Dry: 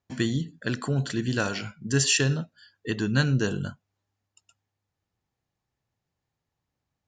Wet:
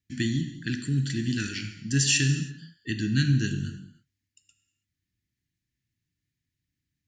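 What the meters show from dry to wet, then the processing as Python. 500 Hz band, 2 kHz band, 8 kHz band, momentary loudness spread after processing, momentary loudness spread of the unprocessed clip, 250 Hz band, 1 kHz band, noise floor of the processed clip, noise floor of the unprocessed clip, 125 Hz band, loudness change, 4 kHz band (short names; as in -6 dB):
-10.5 dB, -2.0 dB, 0.0 dB, 14 LU, 12 LU, 0.0 dB, under -15 dB, -85 dBFS, -85 dBFS, +1.0 dB, -0.5 dB, 0.0 dB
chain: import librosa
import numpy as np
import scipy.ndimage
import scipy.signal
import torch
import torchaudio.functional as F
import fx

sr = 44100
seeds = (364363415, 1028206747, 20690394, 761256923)

y = scipy.signal.sosfilt(scipy.signal.cheby1(3, 1.0, [310.0, 1800.0], 'bandstop', fs=sr, output='sos'), x)
y = fx.rev_gated(y, sr, seeds[0], gate_ms=350, shape='falling', drr_db=6.5)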